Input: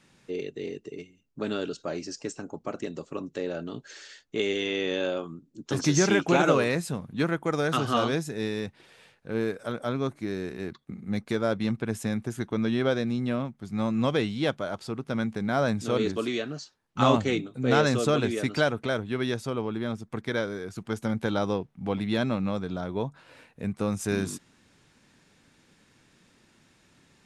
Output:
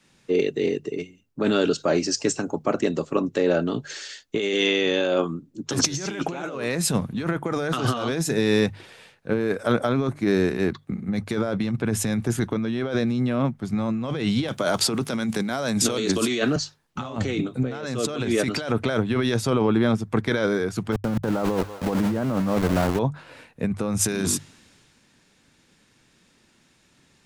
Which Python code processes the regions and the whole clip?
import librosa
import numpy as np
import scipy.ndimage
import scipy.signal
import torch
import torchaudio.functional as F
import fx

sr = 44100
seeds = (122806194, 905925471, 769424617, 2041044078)

y = fx.chain(x, sr, fx.highpass(hz=120.0, slope=12),
    fx.high_shelf(hz=5100.0, db=10.5),
    fx.band_squash(depth_pct=100), at=(14.48, 16.56))
y = fx.chain(y, sr, fx.cheby2_lowpass(hz=3600.0, order=4, stop_db=50),
    fx.sample_gate(floor_db=-34.0),
    fx.echo_thinned(ms=192, feedback_pct=57, hz=790.0, wet_db=-15.0), at=(20.92, 22.99))
y = fx.over_compress(y, sr, threshold_db=-31.0, ratio=-1.0)
y = fx.hum_notches(y, sr, base_hz=50, count=3)
y = fx.band_widen(y, sr, depth_pct=40)
y = y * 10.0 ** (8.0 / 20.0)